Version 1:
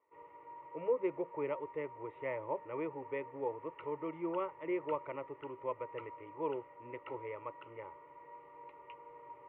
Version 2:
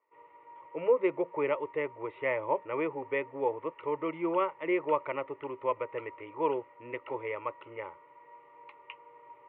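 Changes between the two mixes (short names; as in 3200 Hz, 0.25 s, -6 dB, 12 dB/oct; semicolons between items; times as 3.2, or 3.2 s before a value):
speech +9.5 dB; master: add tilt +2 dB/oct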